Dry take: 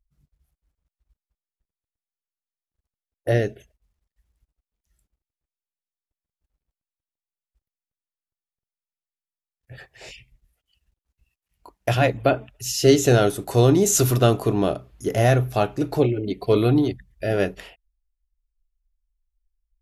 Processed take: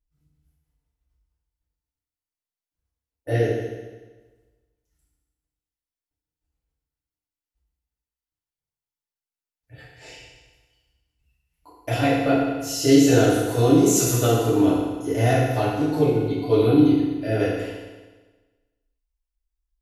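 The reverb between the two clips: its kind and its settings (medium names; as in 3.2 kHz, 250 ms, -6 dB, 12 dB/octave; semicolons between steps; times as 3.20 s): FDN reverb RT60 1.3 s, low-frequency decay 1×, high-frequency decay 0.95×, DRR -9.5 dB; trim -10.5 dB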